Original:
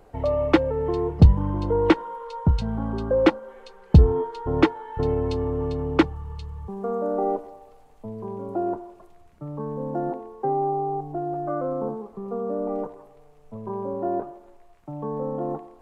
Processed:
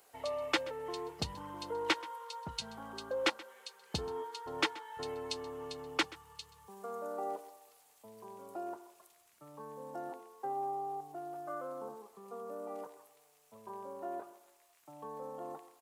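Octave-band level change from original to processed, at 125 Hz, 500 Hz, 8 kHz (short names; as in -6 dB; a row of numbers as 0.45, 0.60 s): -29.0 dB, -15.5 dB, n/a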